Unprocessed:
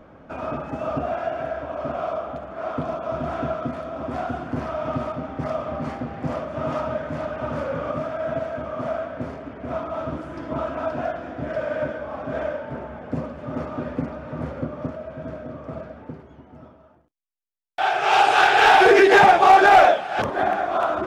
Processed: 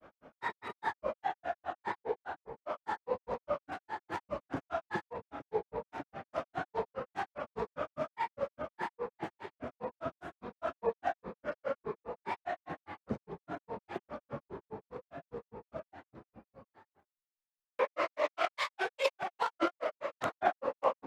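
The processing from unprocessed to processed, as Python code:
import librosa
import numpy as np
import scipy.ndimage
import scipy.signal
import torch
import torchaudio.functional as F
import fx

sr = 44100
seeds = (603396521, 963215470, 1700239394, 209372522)

y = fx.low_shelf(x, sr, hz=300.0, db=-11.0)
y = fx.over_compress(y, sr, threshold_db=-19.0, ratio=-0.5)
y = fx.granulator(y, sr, seeds[0], grain_ms=121.0, per_s=4.9, spray_ms=22.0, spread_st=7)
y = y * librosa.db_to_amplitude(-5.0)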